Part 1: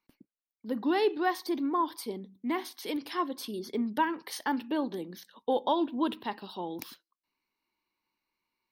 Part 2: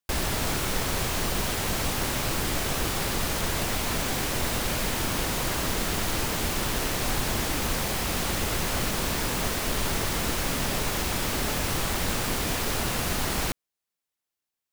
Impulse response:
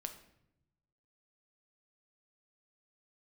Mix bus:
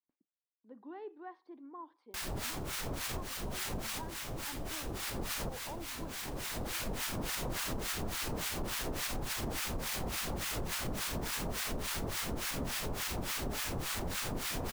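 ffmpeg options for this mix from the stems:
-filter_complex "[0:a]lowpass=1.4k,lowshelf=f=180:g=-11,volume=-17.5dB,asplit=2[a][b];[1:a]alimiter=limit=-20.5dB:level=0:latency=1,acrossover=split=960[c][d];[c]aeval=exprs='val(0)*(1-1/2+1/2*cos(2*PI*3.5*n/s))':c=same[e];[d]aeval=exprs='val(0)*(1-1/2-1/2*cos(2*PI*3.5*n/s))':c=same[f];[e][f]amix=inputs=2:normalize=0,adelay=2050,volume=1.5dB,asplit=2[g][h];[h]volume=-24dB[i];[b]apad=whole_len=739614[j];[g][j]sidechaincompress=threshold=-52dB:ratio=6:attack=42:release=1410[k];[i]aecho=0:1:86:1[l];[a][k][l]amix=inputs=3:normalize=0,acompressor=threshold=-33dB:ratio=6"

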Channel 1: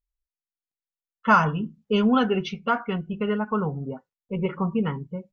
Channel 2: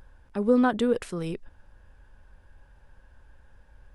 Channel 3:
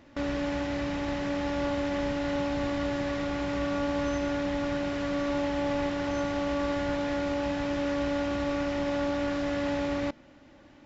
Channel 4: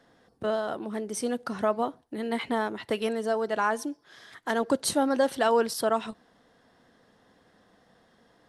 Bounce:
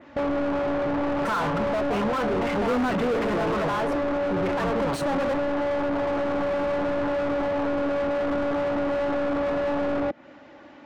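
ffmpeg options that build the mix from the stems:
-filter_complex "[0:a]lowshelf=f=390:g=-4.5,aecho=1:1:5.9:0.5,volume=-11.5dB,asplit=2[a][b];[1:a]adelay=2200,volume=-6dB[c];[2:a]adynamicequalizer=threshold=0.002:dfrequency=5300:dqfactor=0.95:tfrequency=5300:tqfactor=0.95:attack=5:release=100:ratio=0.375:range=2:mode=cutabove:tftype=bell,flanger=delay=0.4:depth=5.6:regen=-62:speed=0.68:shape=triangular,acompressor=threshold=-39dB:ratio=6,volume=1dB[d];[3:a]highshelf=f=5.1k:g=6.5,adelay=100,volume=-11.5dB[e];[b]apad=whole_len=378803[f];[e][f]sidechaingate=range=-33dB:threshold=-59dB:ratio=16:detection=peak[g];[a][c][d][g]amix=inputs=4:normalize=0,afwtdn=0.00794,asplit=2[h][i];[i]highpass=f=720:p=1,volume=40dB,asoftclip=type=tanh:threshold=-17dB[j];[h][j]amix=inputs=2:normalize=0,lowpass=f=1.2k:p=1,volume=-6dB"

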